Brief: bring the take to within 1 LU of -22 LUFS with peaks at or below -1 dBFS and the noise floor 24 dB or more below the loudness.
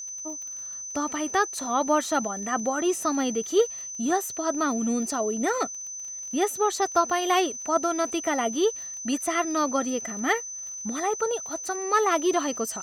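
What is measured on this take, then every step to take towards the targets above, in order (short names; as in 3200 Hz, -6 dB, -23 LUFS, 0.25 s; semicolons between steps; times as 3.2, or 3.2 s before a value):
ticks 29/s; steady tone 6100 Hz; tone level -34 dBFS; loudness -26.0 LUFS; peak -9.0 dBFS; loudness target -22.0 LUFS
-> de-click; notch 6100 Hz, Q 30; gain +4 dB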